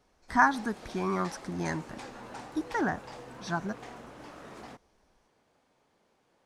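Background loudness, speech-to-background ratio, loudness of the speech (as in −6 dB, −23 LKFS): −46.0 LKFS, 15.0 dB, −31.0 LKFS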